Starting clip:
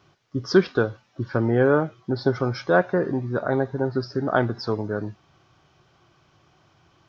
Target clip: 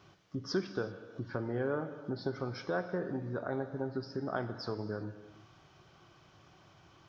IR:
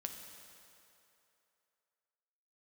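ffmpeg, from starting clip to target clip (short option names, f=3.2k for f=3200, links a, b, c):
-filter_complex "[0:a]acompressor=threshold=-42dB:ratio=2,asplit=2[a][b];[1:a]atrim=start_sample=2205,afade=t=out:st=0.44:d=0.01,atrim=end_sample=19845[c];[b][c]afir=irnorm=-1:irlink=0,volume=6dB[d];[a][d]amix=inputs=2:normalize=0,volume=-8.5dB"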